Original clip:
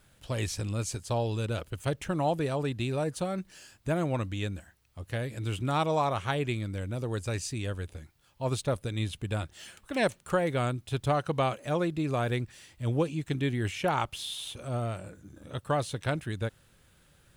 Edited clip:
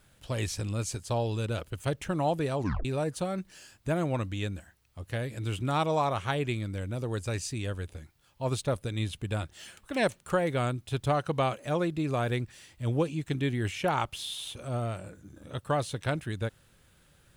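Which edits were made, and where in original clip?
2.58 tape stop 0.27 s

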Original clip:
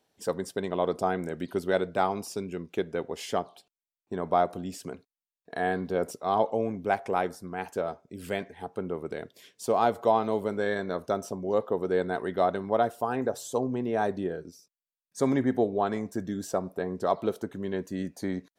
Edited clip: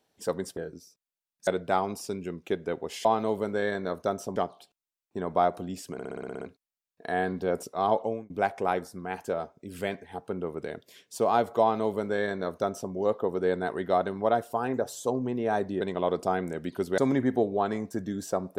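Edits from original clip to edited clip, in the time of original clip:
0.57–1.74 swap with 14.29–15.19
4.89 stutter 0.06 s, 9 plays
6.51–6.78 fade out
10.09–11.4 copy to 3.32

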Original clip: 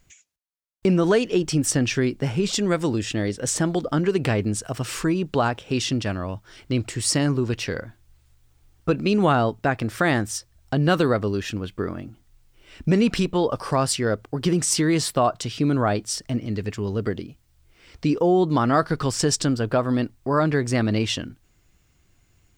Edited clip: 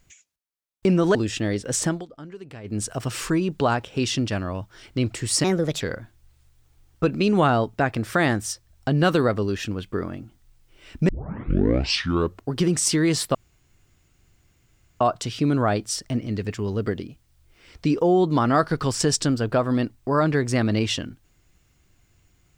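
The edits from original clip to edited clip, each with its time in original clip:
1.15–2.89 cut
3.6–4.56 dip -18 dB, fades 0.19 s
7.18–7.66 speed 131%
12.94 tape start 1.45 s
15.2 insert room tone 1.66 s

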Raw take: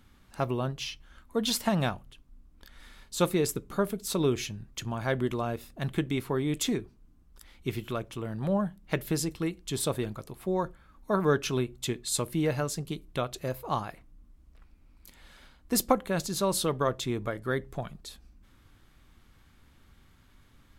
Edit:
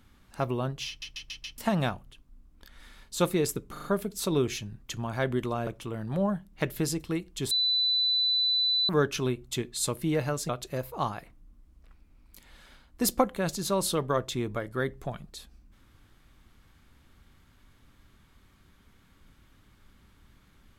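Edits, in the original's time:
0.88 stutter in place 0.14 s, 5 plays
3.72 stutter 0.04 s, 4 plays
5.55–7.98 cut
9.82–11.2 bleep 3990 Hz -22.5 dBFS
12.8–13.2 cut

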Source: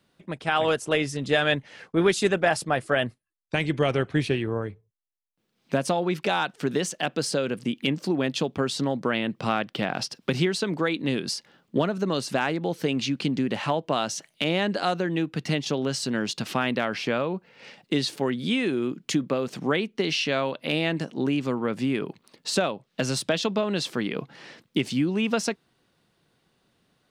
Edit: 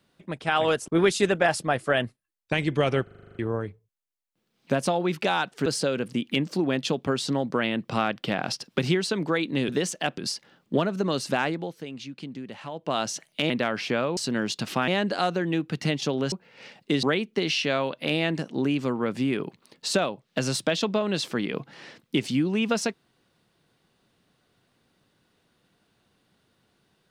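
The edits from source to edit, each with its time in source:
0.88–1.9 cut
4.05 stutter in place 0.04 s, 9 plays
6.68–7.17 move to 11.2
12.49–14.02 dip -12 dB, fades 0.29 s
14.52–15.96 swap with 16.67–17.34
18.05–19.65 cut

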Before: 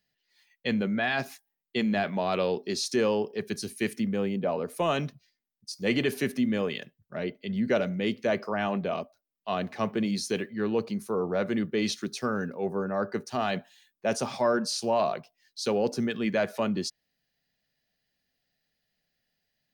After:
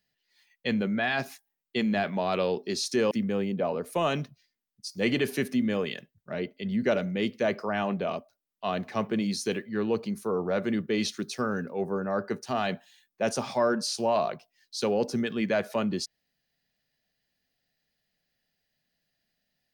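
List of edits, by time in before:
3.11–3.95 cut

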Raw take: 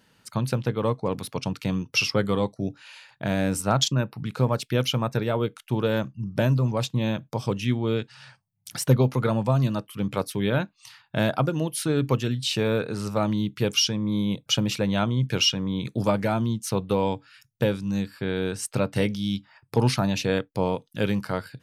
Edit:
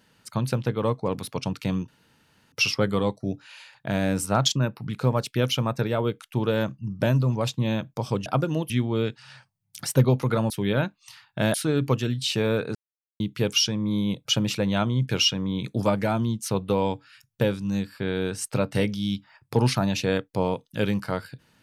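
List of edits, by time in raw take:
1.88 insert room tone 0.64 s
9.42–10.27 cut
11.31–11.75 move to 7.62
12.96–13.41 mute

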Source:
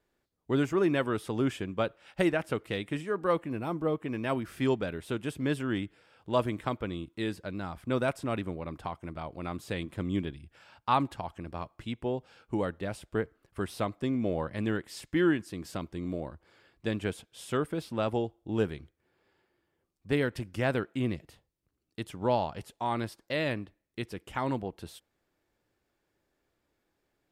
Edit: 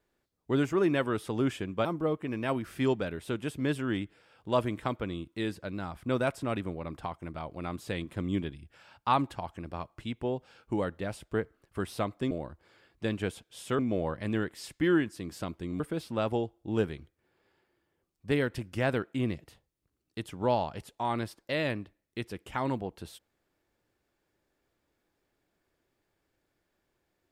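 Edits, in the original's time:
1.85–3.66 cut
16.13–17.61 move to 14.12

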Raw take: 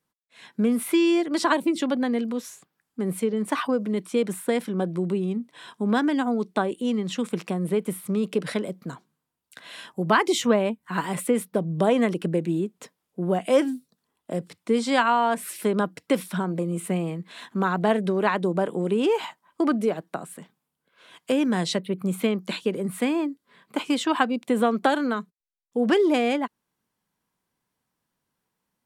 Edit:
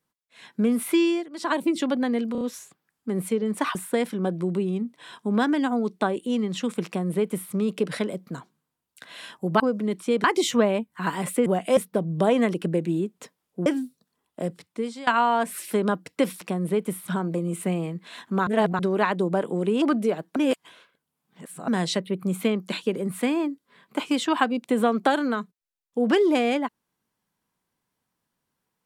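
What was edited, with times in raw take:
1.01–1.63 dip -17.5 dB, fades 0.31 s
2.32 stutter 0.03 s, 4 plays
3.66–4.3 move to 10.15
7.41–8.08 copy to 16.32
13.26–13.57 move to 11.37
14.38–14.98 fade out, to -20 dB
17.71–18.03 reverse
19.06–19.61 cut
20.15–21.47 reverse

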